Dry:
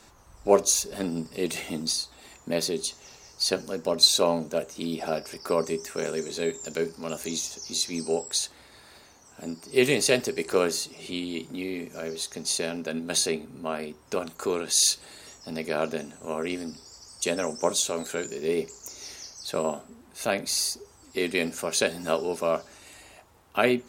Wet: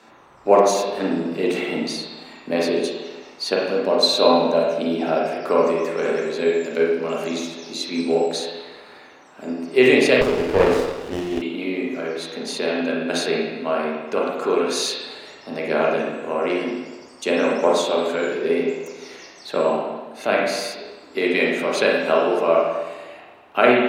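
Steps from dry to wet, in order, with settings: three-band isolator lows -23 dB, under 180 Hz, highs -15 dB, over 3800 Hz; spring tank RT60 1.2 s, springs 31/39/48 ms, chirp 25 ms, DRR -3 dB; 10.21–11.42 running maximum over 17 samples; gain +5 dB

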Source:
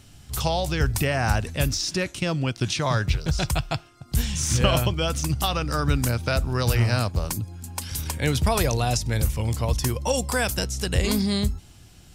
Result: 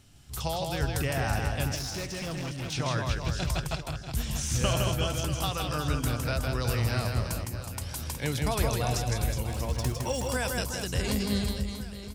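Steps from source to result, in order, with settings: 9.51–10.28 median filter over 3 samples; on a send: reverse bouncing-ball echo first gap 0.16 s, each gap 1.3×, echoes 5; 1.75–2.73 on the sum: hard clip -24 dBFS, distortion -20 dB; gain -7.5 dB

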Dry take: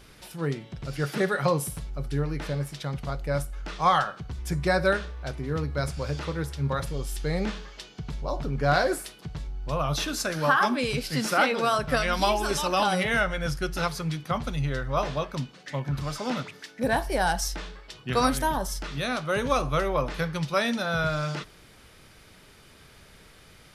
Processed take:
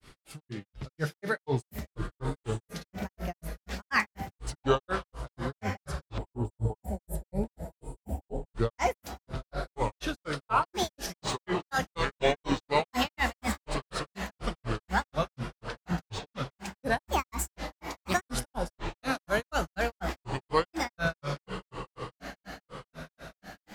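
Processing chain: diffused feedback echo 0.863 s, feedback 57%, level -9.5 dB; grains 0.166 s, grains 4.1/s, spray 18 ms, pitch spread up and down by 7 st; spectral gain 6.18–8.54, 990–7100 Hz -17 dB

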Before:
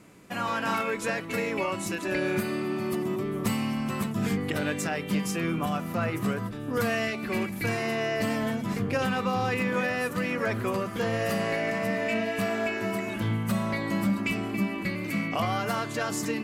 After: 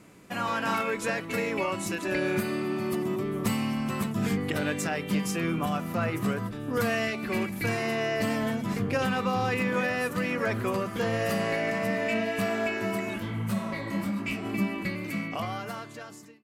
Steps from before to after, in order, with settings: ending faded out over 1.79 s; 13.18–14.44 detuned doubles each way 36 cents -> 48 cents

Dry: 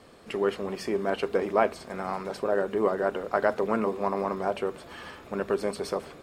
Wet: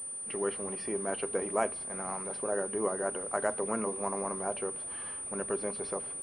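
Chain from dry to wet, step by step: pulse-width modulation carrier 9300 Hz; gain -6.5 dB

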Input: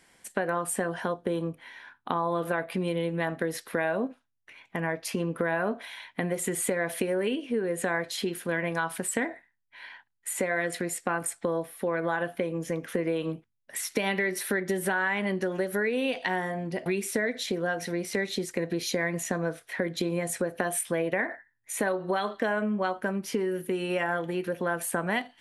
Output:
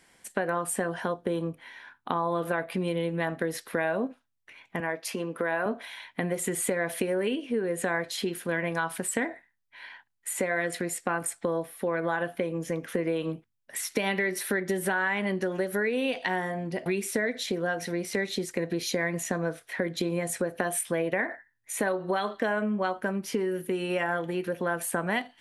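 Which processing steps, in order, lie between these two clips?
4.8–5.66 Bessel high-pass 280 Hz, order 2

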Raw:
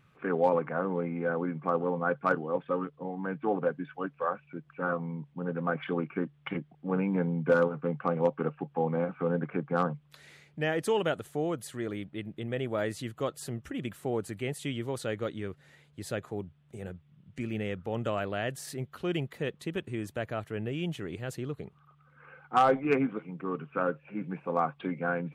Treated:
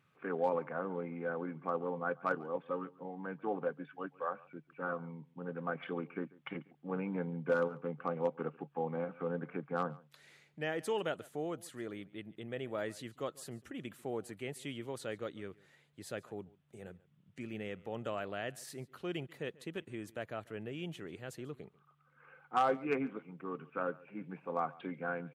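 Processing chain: HPF 190 Hz 6 dB/oct; on a send: echo 0.141 s -22.5 dB; on the sum: gain -6.5 dB

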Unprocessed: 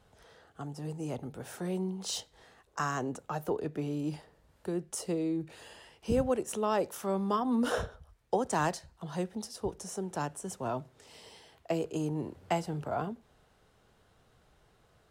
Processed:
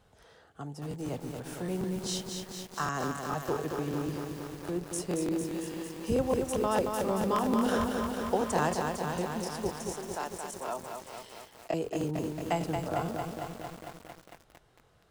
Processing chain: 9.87–10.81 HPF 460 Hz 12 dB/oct; crackling interface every 0.15 s, samples 1024, repeat, from 0.89; lo-fi delay 0.226 s, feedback 80%, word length 8-bit, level -4.5 dB

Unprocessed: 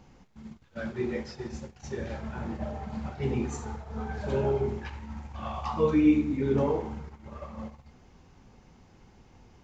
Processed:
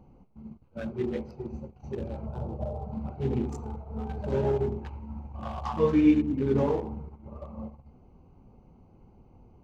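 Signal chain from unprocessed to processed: Wiener smoothing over 25 samples; 2.26–2.92 graphic EQ 125/250/500/2000 Hz +6/-10/+7/-9 dB; gain +1 dB

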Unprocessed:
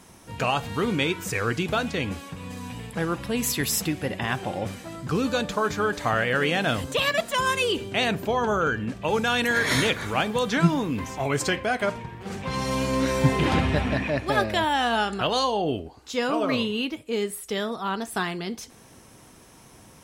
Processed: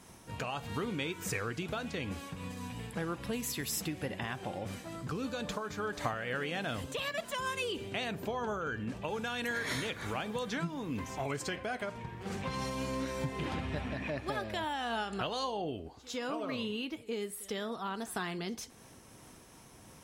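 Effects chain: compressor 6:1, threshold -28 dBFS, peak gain reduction 13.5 dB; reverse echo 0.104 s -21.5 dB; noise-modulated level, depth 50%; gain -2 dB

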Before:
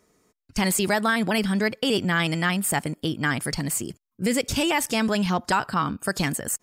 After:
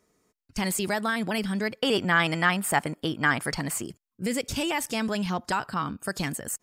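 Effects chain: 1.82–3.87 bell 1100 Hz +8.5 dB 2.7 oct; gain -5 dB

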